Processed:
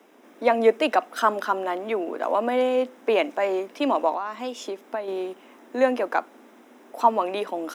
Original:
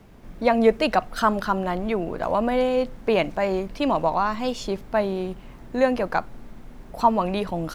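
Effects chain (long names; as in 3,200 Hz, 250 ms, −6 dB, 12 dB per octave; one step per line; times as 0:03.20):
0:04.12–0:05.08: downward compressor 6 to 1, threshold −26 dBFS, peak gain reduction 9 dB
Butterworth high-pass 250 Hz 48 dB per octave
notch filter 4,400 Hz, Q 5.2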